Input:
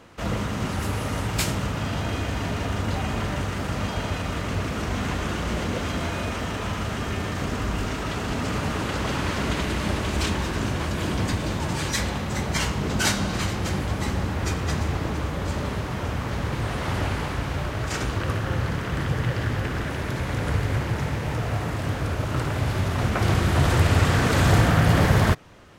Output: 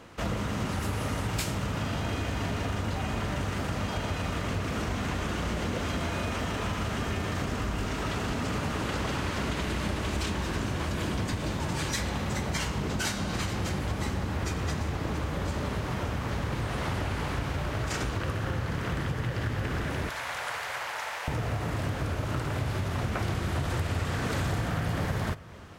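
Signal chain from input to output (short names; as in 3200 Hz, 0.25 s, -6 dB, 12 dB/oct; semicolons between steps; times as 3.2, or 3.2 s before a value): 20.09–21.28 HPF 680 Hz 24 dB/oct; compressor 6:1, threshold -27 dBFS, peak gain reduction 13.5 dB; on a send: reverb RT60 5.6 s, pre-delay 34 ms, DRR 17.5 dB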